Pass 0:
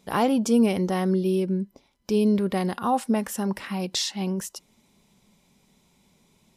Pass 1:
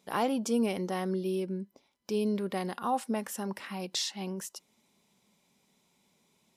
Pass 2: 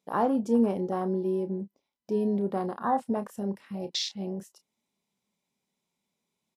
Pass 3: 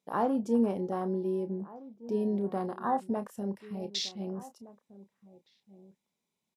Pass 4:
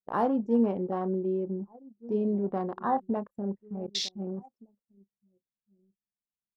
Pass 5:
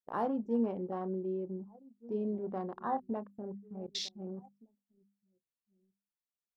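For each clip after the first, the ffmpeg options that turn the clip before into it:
-af "highpass=f=270:p=1,volume=-5.5dB"
-filter_complex "[0:a]afwtdn=0.02,asplit=2[a][b];[b]adelay=30,volume=-11dB[c];[a][c]amix=inputs=2:normalize=0,volume=3.5dB"
-filter_complex "[0:a]asplit=2[a][b];[b]adelay=1516,volume=-18dB,highshelf=f=4k:g=-34.1[c];[a][c]amix=inputs=2:normalize=0,volume=-3dB"
-af "anlmdn=1,volume=2dB"
-af "bandreject=f=50:t=h:w=6,bandreject=f=100:t=h:w=6,bandreject=f=150:t=h:w=6,bandreject=f=200:t=h:w=6,bandreject=f=250:t=h:w=6,volume=-6.5dB"

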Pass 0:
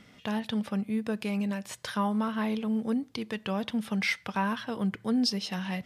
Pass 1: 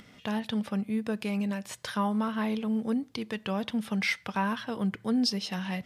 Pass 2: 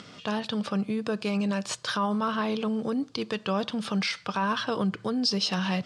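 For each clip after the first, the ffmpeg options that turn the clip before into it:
-af "acompressor=mode=upward:threshold=-50dB:ratio=2.5"
-af "alimiter=level_in=2.5dB:limit=-24dB:level=0:latency=1:release=53,volume=-2.5dB,highpass=120,equalizer=f=230:t=q:w=4:g=-7,equalizer=f=820:t=q:w=4:g=-3,equalizer=f=1.2k:t=q:w=4:g=4,equalizer=f=2k:t=q:w=4:g=-8,equalizer=f=4.6k:t=q:w=4:g=5,lowpass=f=8.3k:w=0.5412,lowpass=f=8.3k:w=1.3066,volume=9dB"

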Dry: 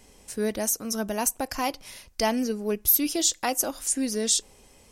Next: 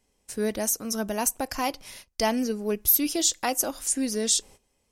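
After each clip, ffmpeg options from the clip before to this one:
-af "agate=range=-17dB:threshold=-45dB:ratio=16:detection=peak"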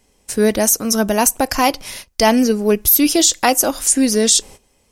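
-af "alimiter=level_in=13.5dB:limit=-1dB:release=50:level=0:latency=1,volume=-1dB"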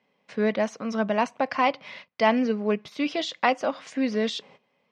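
-af "highpass=f=150:w=0.5412,highpass=f=150:w=1.3066,equalizer=f=160:t=q:w=4:g=3,equalizer=f=340:t=q:w=4:g=-9,equalizer=f=580:t=q:w=4:g=4,equalizer=f=1.1k:t=q:w=4:g=5,equalizer=f=2.1k:t=q:w=4:g=5,lowpass=f=3.6k:w=0.5412,lowpass=f=3.6k:w=1.3066,volume=-8.5dB"

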